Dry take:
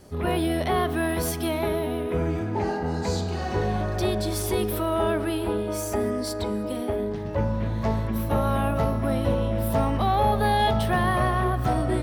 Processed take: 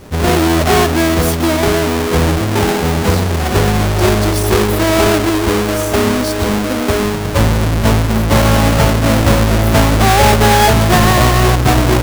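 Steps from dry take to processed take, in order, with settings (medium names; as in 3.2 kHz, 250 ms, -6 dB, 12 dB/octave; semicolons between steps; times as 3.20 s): square wave that keeps the level; trim +8.5 dB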